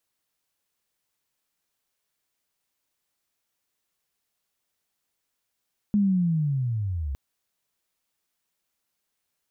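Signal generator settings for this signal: sweep linear 210 Hz -> 64 Hz -17.5 dBFS -> -27 dBFS 1.21 s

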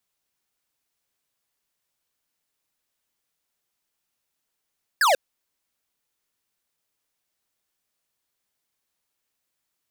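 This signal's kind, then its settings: laser zap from 1.8 kHz, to 500 Hz, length 0.14 s square, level -18 dB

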